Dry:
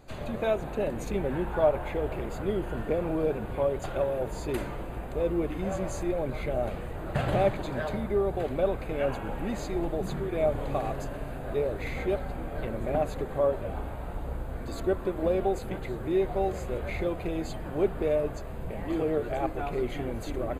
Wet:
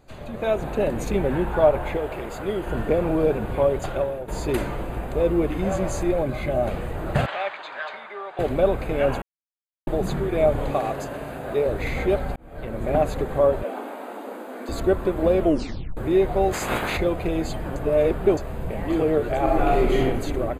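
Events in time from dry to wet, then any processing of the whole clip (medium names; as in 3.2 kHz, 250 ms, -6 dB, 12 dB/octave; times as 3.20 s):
1.97–2.67 s: bass shelf 330 Hz -9 dB
3.62–4.28 s: fade out equal-power, to -14 dB
6.23–6.67 s: comb of notches 460 Hz
7.26–8.39 s: Butterworth band-pass 2 kHz, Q 0.66
9.22–9.87 s: mute
10.71–11.66 s: high-pass 210 Hz 6 dB/octave
12.36–12.97 s: fade in
13.63–14.69 s: brick-wall FIR high-pass 210 Hz
15.40 s: tape stop 0.57 s
16.52–16.96 s: spectral peaks clipped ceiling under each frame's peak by 24 dB
17.76–18.37 s: reverse
19.43–20.02 s: reverb throw, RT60 1 s, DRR -3 dB
whole clip: level rider gain up to 9 dB; trim -2 dB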